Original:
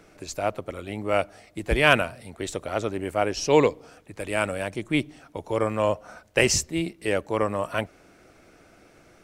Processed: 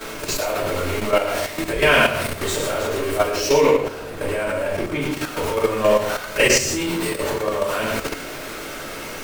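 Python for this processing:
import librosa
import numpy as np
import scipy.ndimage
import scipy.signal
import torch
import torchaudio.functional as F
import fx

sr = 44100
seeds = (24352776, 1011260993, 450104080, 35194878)

y = x + 0.5 * 10.0 ** (-25.0 / 20.0) * np.sign(x)
y = fx.high_shelf(y, sr, hz=2000.0, db=-9.5, at=(3.66, 5.01))
y = fx.over_compress(y, sr, threshold_db=-26.0, ratio=-0.5, at=(6.84, 7.4), fade=0.02)
y = fx.low_shelf(y, sr, hz=220.0, db=-11.5)
y = y + 10.0 ** (-5.5 / 20.0) * np.pad(y, (int(112 * sr / 1000.0), 0))[:len(y)]
y = fx.room_shoebox(y, sr, seeds[0], volume_m3=84.0, walls='mixed', distance_m=2.8)
y = fx.level_steps(y, sr, step_db=9)
y = y * librosa.db_to_amplitude(-5.0)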